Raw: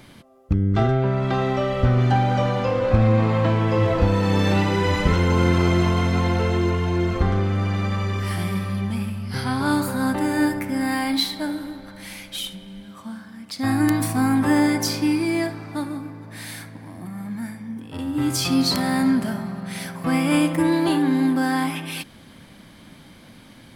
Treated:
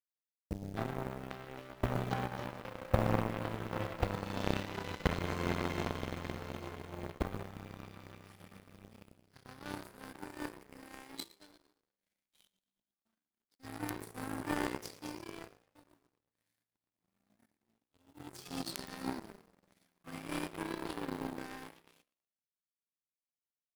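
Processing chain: bit-crush 7-bit; frequency-shifting echo 0.115 s, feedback 62%, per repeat +64 Hz, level -8.5 dB; power-law curve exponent 3; gain -5 dB

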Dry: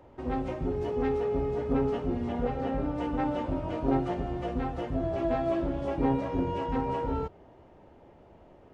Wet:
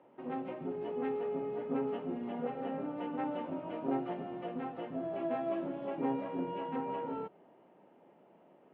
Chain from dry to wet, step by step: Chebyshev band-pass 180–3000 Hz, order 3; gain -6 dB

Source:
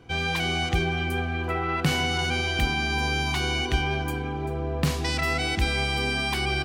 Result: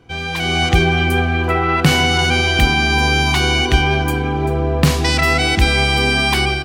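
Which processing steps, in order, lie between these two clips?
AGC gain up to 11 dB; gain +1.5 dB

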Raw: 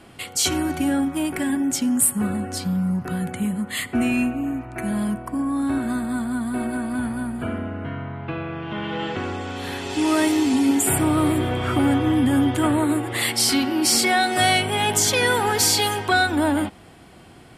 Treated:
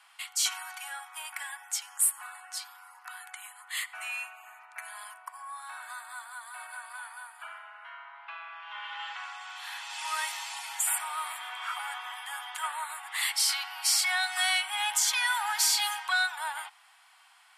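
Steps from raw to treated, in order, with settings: steep high-pass 850 Hz 48 dB/oct; gain -6 dB

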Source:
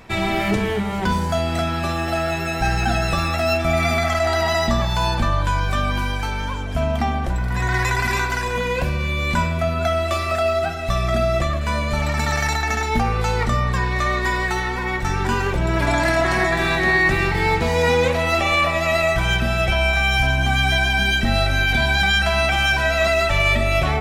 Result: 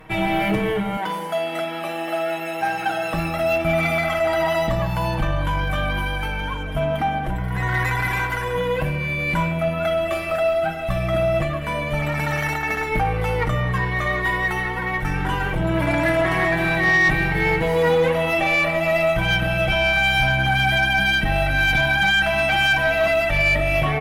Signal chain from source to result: band shelf 5600 Hz -11.5 dB 1.3 oct; notch 2500 Hz, Q 17; comb 6.4 ms, depth 76%; tube stage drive 9 dB, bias 0.25; 0.97–3.14 HPF 380 Hz 12 dB/oct; gain -1 dB

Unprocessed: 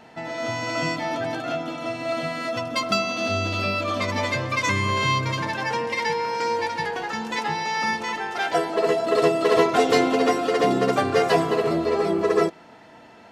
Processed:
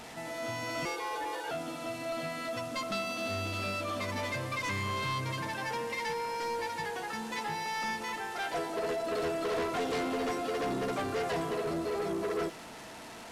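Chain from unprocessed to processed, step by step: delta modulation 64 kbps, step -33 dBFS; 0.85–1.51 frequency shift +190 Hz; soft clip -21 dBFS, distortion -10 dB; gain -7.5 dB

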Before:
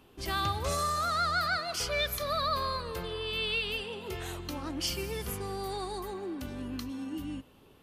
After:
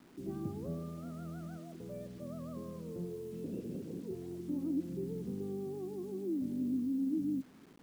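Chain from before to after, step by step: 3.44–4.03 LPC vocoder at 8 kHz whisper; Butterworth band-pass 230 Hz, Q 1.3; bit-crush 11-bit; gain +5 dB

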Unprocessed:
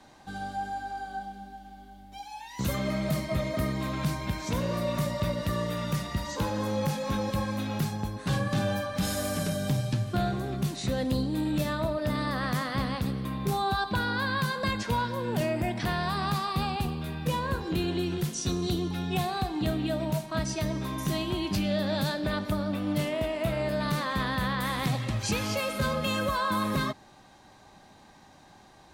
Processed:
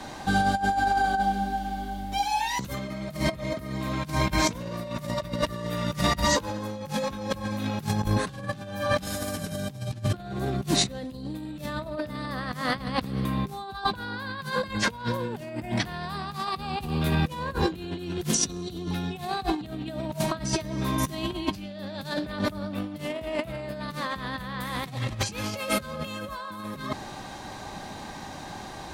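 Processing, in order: negative-ratio compressor -36 dBFS, ratio -0.5; gain +8 dB

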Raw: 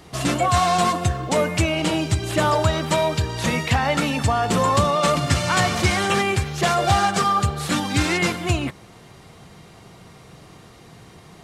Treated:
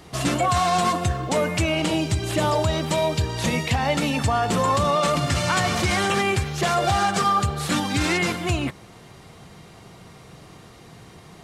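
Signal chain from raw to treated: 1.87–4.14 dynamic EQ 1400 Hz, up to -6 dB, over -36 dBFS, Q 1.6; limiter -12 dBFS, peak gain reduction 6.5 dB

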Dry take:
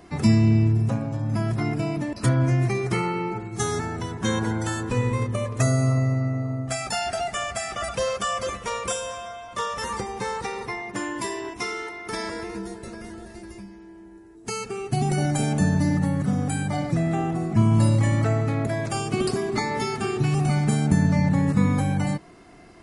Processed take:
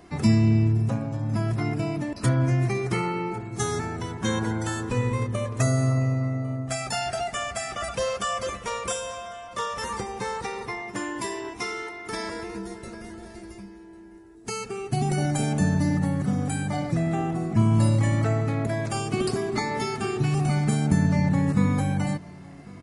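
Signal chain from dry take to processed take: echo 1.099 s -22.5 dB; gain -1.5 dB

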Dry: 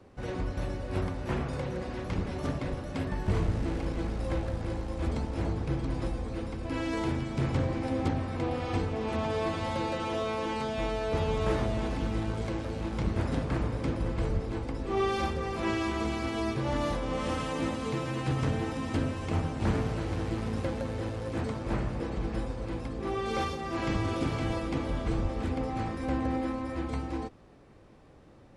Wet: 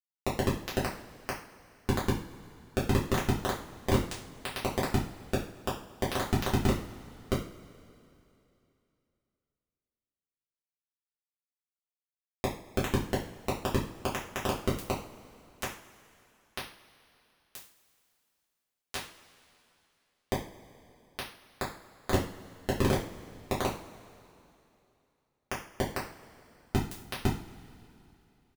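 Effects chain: octaver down 2 oct, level 0 dB; doubler 44 ms -5.5 dB; Schmitt trigger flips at -27 dBFS; bit-crush 4-bit; two-slope reverb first 0.39 s, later 2.9 s, from -21 dB, DRR -7 dB

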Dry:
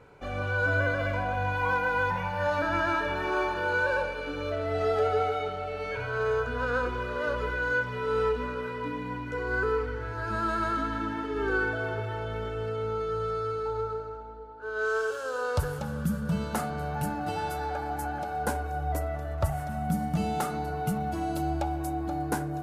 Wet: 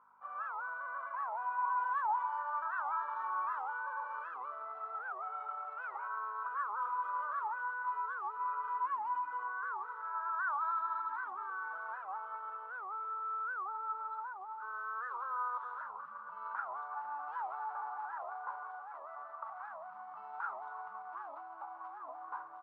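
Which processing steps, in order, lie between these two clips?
CVSD 32 kbps; AGC gain up to 11.5 dB; hum 50 Hz, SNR 13 dB; limiter -20.5 dBFS, peak gain reduction 15.5 dB; Butterworth band-pass 1100 Hz, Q 3.3; speakerphone echo 0.23 s, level -29 dB; record warp 78 rpm, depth 250 cents

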